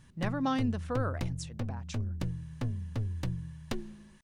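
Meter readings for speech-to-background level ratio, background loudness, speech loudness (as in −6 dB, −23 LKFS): 2.0 dB, −37.5 LKFS, −35.5 LKFS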